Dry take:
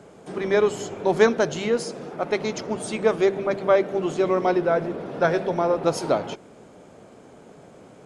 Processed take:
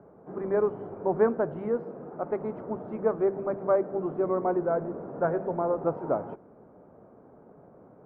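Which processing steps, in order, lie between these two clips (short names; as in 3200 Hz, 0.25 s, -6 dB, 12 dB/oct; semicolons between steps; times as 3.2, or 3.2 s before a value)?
LPF 1300 Hz 24 dB/oct; gain -5.5 dB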